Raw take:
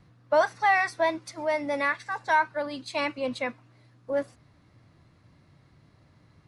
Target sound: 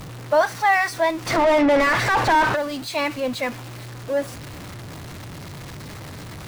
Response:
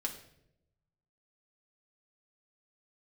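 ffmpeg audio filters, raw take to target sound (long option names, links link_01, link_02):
-filter_complex "[0:a]aeval=exprs='val(0)+0.5*0.0188*sgn(val(0))':channel_layout=same,asplit=3[link_01][link_02][link_03];[link_01]afade=type=out:start_time=1.26:duration=0.02[link_04];[link_02]asplit=2[link_05][link_06];[link_06]highpass=frequency=720:poles=1,volume=34dB,asoftclip=type=tanh:threshold=-12dB[link_07];[link_05][link_07]amix=inputs=2:normalize=0,lowpass=frequency=1100:poles=1,volume=-6dB,afade=type=in:start_time=1.26:duration=0.02,afade=type=out:start_time=2.55:duration=0.02[link_08];[link_03]afade=type=in:start_time=2.55:duration=0.02[link_09];[link_04][link_08][link_09]amix=inputs=3:normalize=0,volume=3.5dB"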